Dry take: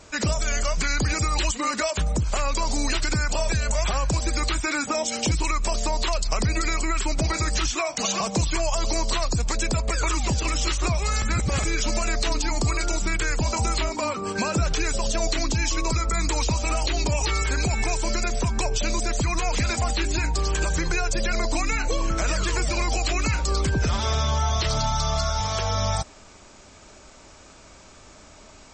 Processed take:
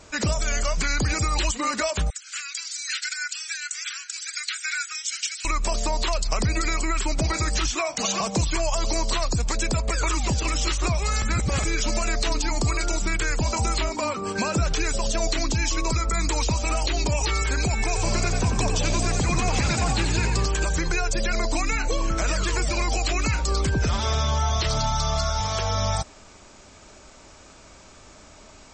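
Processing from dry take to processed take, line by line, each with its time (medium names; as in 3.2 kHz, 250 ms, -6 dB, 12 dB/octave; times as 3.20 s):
2.10–5.45 s: Chebyshev high-pass 1.4 kHz, order 6
17.86–20.46 s: frequency-shifting echo 89 ms, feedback 55%, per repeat +60 Hz, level -6 dB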